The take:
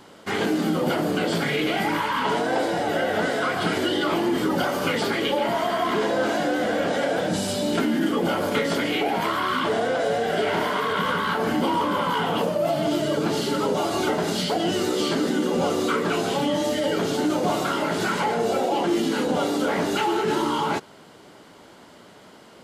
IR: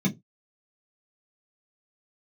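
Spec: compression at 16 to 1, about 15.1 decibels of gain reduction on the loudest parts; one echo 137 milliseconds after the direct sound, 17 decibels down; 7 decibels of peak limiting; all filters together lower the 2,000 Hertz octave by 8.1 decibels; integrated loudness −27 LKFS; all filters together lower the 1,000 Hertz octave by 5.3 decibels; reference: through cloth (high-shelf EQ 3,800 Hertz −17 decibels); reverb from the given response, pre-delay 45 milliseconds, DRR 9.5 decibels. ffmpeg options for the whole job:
-filter_complex "[0:a]equalizer=frequency=1000:width_type=o:gain=-4.5,equalizer=frequency=2000:width_type=o:gain=-5,acompressor=threshold=-35dB:ratio=16,alimiter=level_in=7.5dB:limit=-24dB:level=0:latency=1,volume=-7.5dB,aecho=1:1:137:0.141,asplit=2[link_01][link_02];[1:a]atrim=start_sample=2205,adelay=45[link_03];[link_02][link_03]afir=irnorm=-1:irlink=0,volume=-17dB[link_04];[link_01][link_04]amix=inputs=2:normalize=0,highshelf=frequency=3800:gain=-17,volume=9dB"

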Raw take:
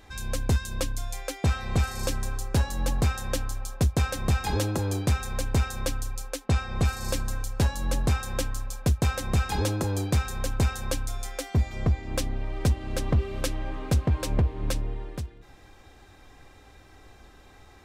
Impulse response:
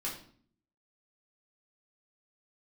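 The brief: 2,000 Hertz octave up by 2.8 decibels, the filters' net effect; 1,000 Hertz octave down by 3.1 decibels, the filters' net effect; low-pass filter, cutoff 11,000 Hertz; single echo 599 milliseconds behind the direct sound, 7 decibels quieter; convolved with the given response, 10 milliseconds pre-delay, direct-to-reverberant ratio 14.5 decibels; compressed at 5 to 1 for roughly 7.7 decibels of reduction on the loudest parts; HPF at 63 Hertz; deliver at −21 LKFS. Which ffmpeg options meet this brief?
-filter_complex "[0:a]highpass=63,lowpass=11000,equalizer=frequency=1000:width_type=o:gain=-6,equalizer=frequency=2000:width_type=o:gain=6,acompressor=threshold=-28dB:ratio=5,aecho=1:1:599:0.447,asplit=2[link_01][link_02];[1:a]atrim=start_sample=2205,adelay=10[link_03];[link_02][link_03]afir=irnorm=-1:irlink=0,volume=-16.5dB[link_04];[link_01][link_04]amix=inputs=2:normalize=0,volume=12.5dB"

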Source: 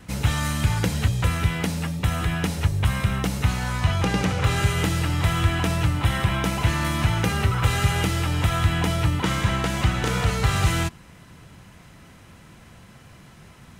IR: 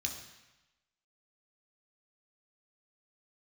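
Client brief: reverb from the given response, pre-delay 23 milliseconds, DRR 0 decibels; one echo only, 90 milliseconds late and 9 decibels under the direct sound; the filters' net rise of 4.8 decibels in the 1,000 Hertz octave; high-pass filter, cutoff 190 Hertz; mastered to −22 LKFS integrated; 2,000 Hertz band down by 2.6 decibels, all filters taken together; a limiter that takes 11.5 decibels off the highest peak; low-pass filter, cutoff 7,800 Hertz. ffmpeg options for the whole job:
-filter_complex "[0:a]highpass=190,lowpass=7800,equalizer=frequency=1000:width_type=o:gain=8,equalizer=frequency=2000:width_type=o:gain=-6,alimiter=limit=-20dB:level=0:latency=1,aecho=1:1:90:0.355,asplit=2[link_01][link_02];[1:a]atrim=start_sample=2205,adelay=23[link_03];[link_02][link_03]afir=irnorm=-1:irlink=0,volume=-1.5dB[link_04];[link_01][link_04]amix=inputs=2:normalize=0,volume=3.5dB"

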